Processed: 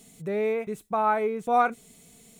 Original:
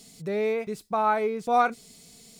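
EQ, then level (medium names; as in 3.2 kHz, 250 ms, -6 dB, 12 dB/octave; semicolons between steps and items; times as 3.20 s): peaking EQ 4.8 kHz -14.5 dB 0.54 oct; 0.0 dB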